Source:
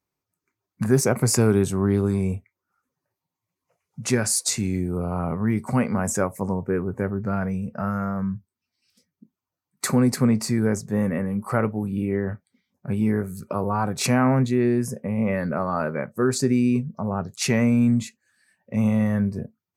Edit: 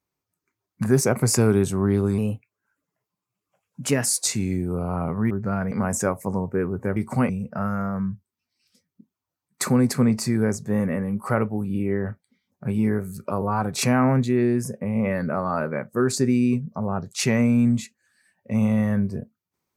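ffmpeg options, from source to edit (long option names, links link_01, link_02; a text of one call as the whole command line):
ffmpeg -i in.wav -filter_complex "[0:a]asplit=7[link_01][link_02][link_03][link_04][link_05][link_06][link_07];[link_01]atrim=end=2.184[link_08];[link_02]atrim=start=2.18:end=4.29,asetpts=PTS-STARTPTS,asetrate=49392,aresample=44100,atrim=end_sample=83081,asetpts=PTS-STARTPTS[link_09];[link_03]atrim=start=4.286:end=5.532[link_10];[link_04]atrim=start=7.108:end=7.522[link_11];[link_05]atrim=start=5.858:end=7.112[link_12];[link_06]atrim=start=5.528:end=5.862[link_13];[link_07]atrim=start=7.518[link_14];[link_08][link_09]acrossfade=duration=0.004:curve1=hsin:curve2=hsin[link_15];[link_15][link_10]acrossfade=duration=0.004:curve1=hsin:curve2=hsin[link_16];[link_16][link_11]acrossfade=duration=0.004:curve1=hsin:curve2=hsin[link_17];[link_17][link_12]acrossfade=duration=0.004:curve1=hsin:curve2=hsin[link_18];[link_18][link_13]acrossfade=duration=0.004:curve1=hsin:curve2=hsin[link_19];[link_19][link_14]acrossfade=duration=0.004:curve1=hsin:curve2=hsin" out.wav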